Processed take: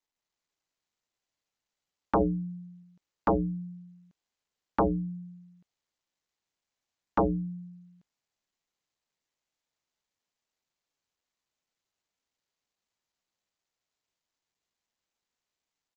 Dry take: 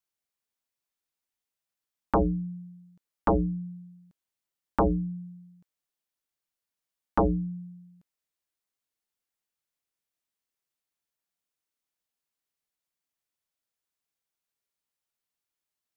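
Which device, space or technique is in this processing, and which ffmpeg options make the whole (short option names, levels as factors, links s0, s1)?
Bluetooth headset: -filter_complex "[0:a]asettb=1/sr,asplit=3[s0][s1][s2];[s0]atrim=end=2.204[s3];[s1]atrim=start=2.2:end=2.83,asetpts=PTS-STARTPTS,afade=t=in:d=0.004:c=qsin,afade=t=out:st=0.626:d=0.004:c=qsin,equalizer=f=580:w=0.67:g=4[s4];[s2]atrim=start=2.826[s5];[s3][s4]acrossfade=d=0.004:c1=hsin:c2=qsin[s6];[s6][s5]acrossfade=d=0.004:c1=qsin:c2=hsin,highpass=f=100:p=1,dynaudnorm=f=180:g=3:m=1.41,aresample=16000,aresample=44100,volume=0.631" -ar 16000 -c:a sbc -b:a 64k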